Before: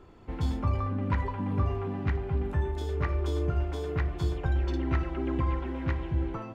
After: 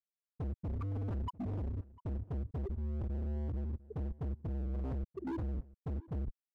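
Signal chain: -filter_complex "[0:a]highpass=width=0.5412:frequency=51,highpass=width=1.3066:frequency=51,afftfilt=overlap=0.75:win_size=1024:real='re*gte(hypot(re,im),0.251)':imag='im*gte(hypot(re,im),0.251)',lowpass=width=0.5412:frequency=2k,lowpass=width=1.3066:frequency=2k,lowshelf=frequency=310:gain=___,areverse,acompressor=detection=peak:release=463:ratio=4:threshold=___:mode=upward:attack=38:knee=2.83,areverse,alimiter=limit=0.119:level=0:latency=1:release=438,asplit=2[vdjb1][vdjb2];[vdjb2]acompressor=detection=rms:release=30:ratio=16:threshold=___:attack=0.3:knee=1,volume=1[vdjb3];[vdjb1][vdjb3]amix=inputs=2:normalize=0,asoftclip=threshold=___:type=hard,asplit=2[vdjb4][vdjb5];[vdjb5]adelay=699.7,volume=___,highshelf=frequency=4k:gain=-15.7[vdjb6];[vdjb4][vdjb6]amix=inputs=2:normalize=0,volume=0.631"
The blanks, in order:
11, 0.0562, 0.0224, 0.0266, 0.1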